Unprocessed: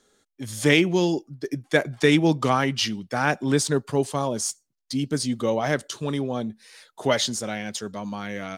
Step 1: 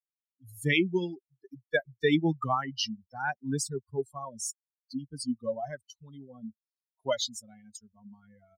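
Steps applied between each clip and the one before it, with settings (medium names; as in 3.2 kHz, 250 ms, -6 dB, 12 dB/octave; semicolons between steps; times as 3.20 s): expander on every frequency bin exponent 3; trim -2 dB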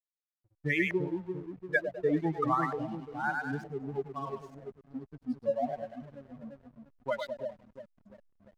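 two-band feedback delay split 560 Hz, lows 344 ms, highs 101 ms, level -4.5 dB; LFO low-pass saw up 1.1 Hz 600–2100 Hz; hysteresis with a dead band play -41.5 dBFS; trim -5 dB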